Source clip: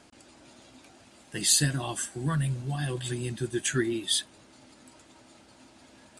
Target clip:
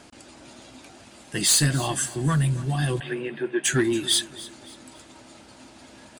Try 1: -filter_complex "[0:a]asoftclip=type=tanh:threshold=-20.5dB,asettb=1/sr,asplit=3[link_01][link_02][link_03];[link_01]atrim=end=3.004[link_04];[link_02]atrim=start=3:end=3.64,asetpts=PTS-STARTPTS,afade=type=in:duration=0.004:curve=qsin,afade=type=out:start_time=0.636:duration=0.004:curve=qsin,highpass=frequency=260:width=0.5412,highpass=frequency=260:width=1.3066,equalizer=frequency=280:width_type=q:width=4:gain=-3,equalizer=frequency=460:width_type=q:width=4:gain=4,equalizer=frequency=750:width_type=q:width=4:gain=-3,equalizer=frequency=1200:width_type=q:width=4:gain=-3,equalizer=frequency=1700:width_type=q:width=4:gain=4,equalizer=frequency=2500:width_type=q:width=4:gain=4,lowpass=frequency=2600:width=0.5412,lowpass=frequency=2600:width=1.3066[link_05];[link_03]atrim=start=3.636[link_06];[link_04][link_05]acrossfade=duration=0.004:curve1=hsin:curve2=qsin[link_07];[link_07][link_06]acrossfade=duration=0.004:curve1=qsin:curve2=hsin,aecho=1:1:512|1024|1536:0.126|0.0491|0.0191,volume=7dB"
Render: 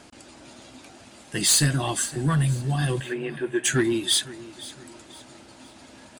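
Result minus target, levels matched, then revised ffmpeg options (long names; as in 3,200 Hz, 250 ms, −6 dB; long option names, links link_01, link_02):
echo 232 ms late
-filter_complex "[0:a]asoftclip=type=tanh:threshold=-20.5dB,asettb=1/sr,asplit=3[link_01][link_02][link_03];[link_01]atrim=end=3.004[link_04];[link_02]atrim=start=3:end=3.64,asetpts=PTS-STARTPTS,afade=type=in:duration=0.004:curve=qsin,afade=type=out:start_time=0.636:duration=0.004:curve=qsin,highpass=frequency=260:width=0.5412,highpass=frequency=260:width=1.3066,equalizer=frequency=280:width_type=q:width=4:gain=-3,equalizer=frequency=460:width_type=q:width=4:gain=4,equalizer=frequency=750:width_type=q:width=4:gain=-3,equalizer=frequency=1200:width_type=q:width=4:gain=-3,equalizer=frequency=1700:width_type=q:width=4:gain=4,equalizer=frequency=2500:width_type=q:width=4:gain=4,lowpass=frequency=2600:width=0.5412,lowpass=frequency=2600:width=1.3066[link_05];[link_03]atrim=start=3.636[link_06];[link_04][link_05]acrossfade=duration=0.004:curve1=hsin:curve2=qsin[link_07];[link_07][link_06]acrossfade=duration=0.004:curve1=qsin:curve2=hsin,aecho=1:1:280|560|840:0.126|0.0491|0.0191,volume=7dB"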